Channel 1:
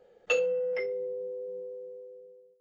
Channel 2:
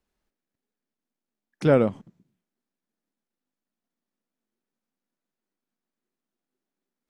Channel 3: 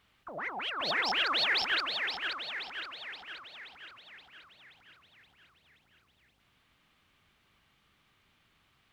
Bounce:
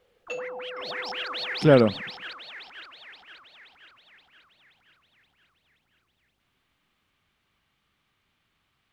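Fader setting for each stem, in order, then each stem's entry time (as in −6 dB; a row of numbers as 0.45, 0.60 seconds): −8.5, +2.0, −4.0 decibels; 0.00, 0.00, 0.00 seconds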